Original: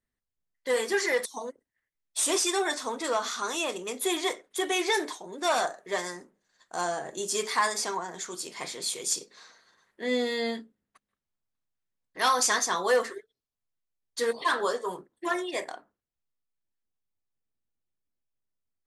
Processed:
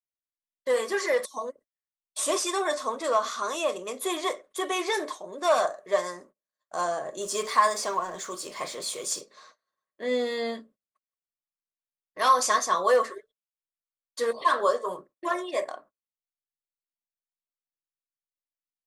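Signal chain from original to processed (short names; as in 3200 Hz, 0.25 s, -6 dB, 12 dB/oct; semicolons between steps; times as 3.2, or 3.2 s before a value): 7.21–9.21 G.711 law mismatch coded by mu; gate -53 dBFS, range -23 dB; small resonant body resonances 590/1100 Hz, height 14 dB, ringing for 35 ms; gain -3 dB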